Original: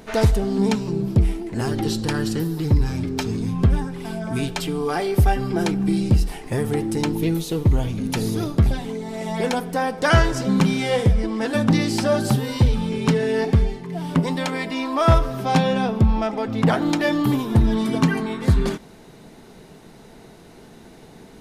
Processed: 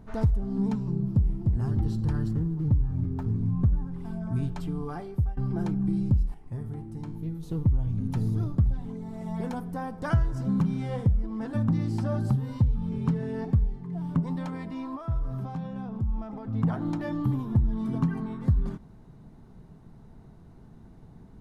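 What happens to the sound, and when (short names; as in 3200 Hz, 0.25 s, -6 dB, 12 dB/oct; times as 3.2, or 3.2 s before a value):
0.84–1.26 echo throw 0.3 s, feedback 55%, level -5 dB
2.31–3.91 median filter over 15 samples
4.87–5.37 fade out, to -19 dB
6.34–7.43 resonator 79 Hz, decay 0.7 s, mix 70%
8.96–10.63 high shelf 11000 Hz +9.5 dB
14.95–16.54 compressor 8:1, threshold -24 dBFS
whole clip: EQ curve 110 Hz 0 dB, 470 Hz -18 dB, 1100 Hz -13 dB, 2400 Hz -25 dB; compressor 3:1, threshold -24 dBFS; gain +2.5 dB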